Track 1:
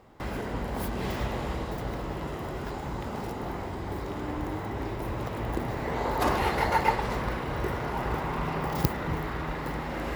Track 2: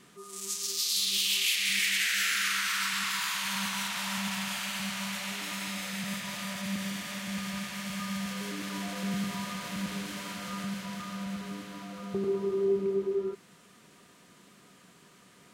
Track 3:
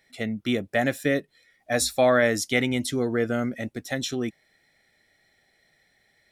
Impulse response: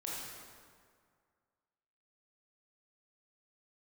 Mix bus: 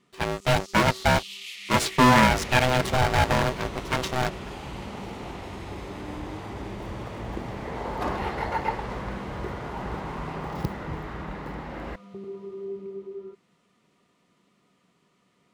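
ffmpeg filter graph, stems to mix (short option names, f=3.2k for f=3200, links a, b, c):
-filter_complex "[0:a]adelay=1800,volume=-3dB[a];[1:a]bandreject=f=1.6k:w=5.9,volume=-8dB[b];[2:a]acrusher=bits=5:dc=4:mix=0:aa=0.000001,aeval=exprs='val(0)*sgn(sin(2*PI*380*n/s))':c=same,volume=3dB[c];[a][b][c]amix=inputs=3:normalize=0,aemphasis=mode=reproduction:type=50kf"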